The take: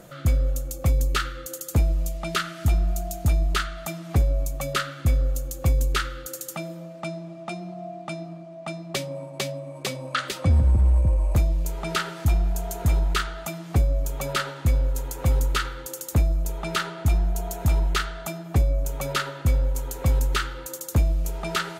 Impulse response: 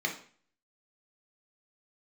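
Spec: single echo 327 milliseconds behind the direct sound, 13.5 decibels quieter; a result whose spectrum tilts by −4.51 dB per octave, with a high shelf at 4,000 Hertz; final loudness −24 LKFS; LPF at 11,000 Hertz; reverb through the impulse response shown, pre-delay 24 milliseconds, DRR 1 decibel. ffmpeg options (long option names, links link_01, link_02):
-filter_complex "[0:a]lowpass=11000,highshelf=frequency=4000:gain=8,aecho=1:1:327:0.211,asplit=2[link_01][link_02];[1:a]atrim=start_sample=2205,adelay=24[link_03];[link_02][link_03]afir=irnorm=-1:irlink=0,volume=-8dB[link_04];[link_01][link_04]amix=inputs=2:normalize=0"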